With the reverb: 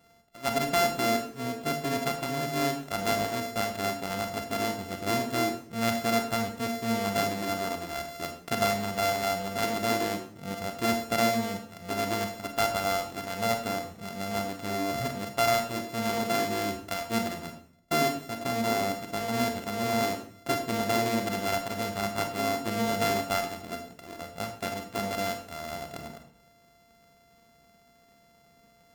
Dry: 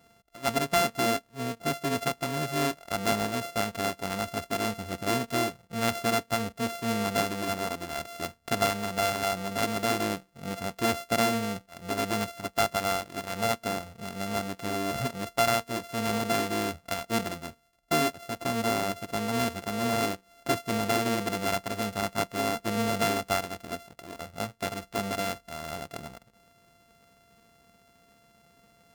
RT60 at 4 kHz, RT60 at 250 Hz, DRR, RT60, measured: 0.50 s, 0.75 s, 5.0 dB, 0.60 s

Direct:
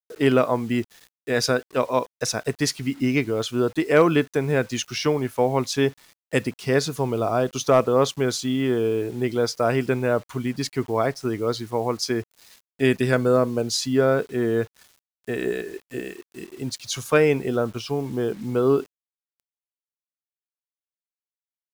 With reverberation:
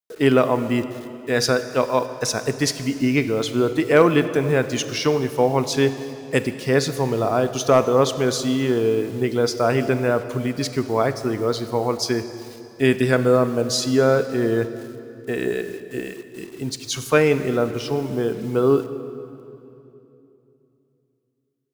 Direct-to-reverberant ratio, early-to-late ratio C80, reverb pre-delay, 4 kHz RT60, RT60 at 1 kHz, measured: 11.0 dB, 12.5 dB, 30 ms, 2.3 s, 2.7 s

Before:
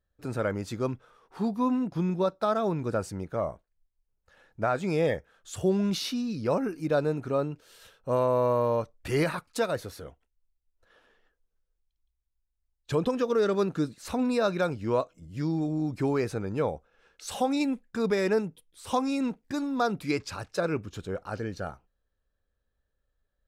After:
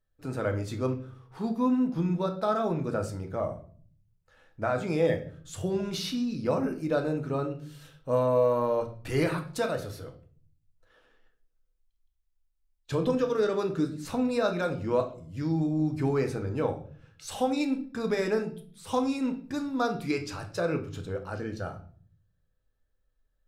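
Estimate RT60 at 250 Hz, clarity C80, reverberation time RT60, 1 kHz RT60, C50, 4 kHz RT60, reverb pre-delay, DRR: 0.85 s, 15.5 dB, 0.45 s, 0.40 s, 12.0 dB, 0.40 s, 3 ms, 4.5 dB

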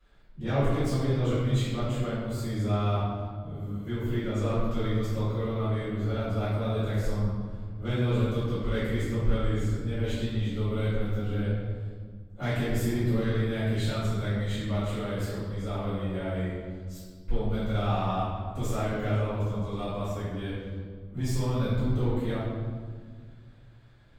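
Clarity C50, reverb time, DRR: −2.5 dB, 1.7 s, −15.5 dB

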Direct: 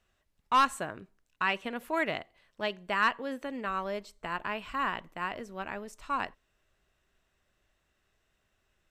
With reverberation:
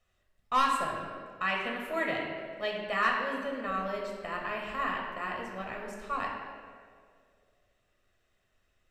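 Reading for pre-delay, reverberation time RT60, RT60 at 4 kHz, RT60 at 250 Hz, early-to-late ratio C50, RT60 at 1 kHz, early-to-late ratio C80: 6 ms, 2.2 s, 1.3 s, 2.1 s, 2.5 dB, 1.8 s, 3.5 dB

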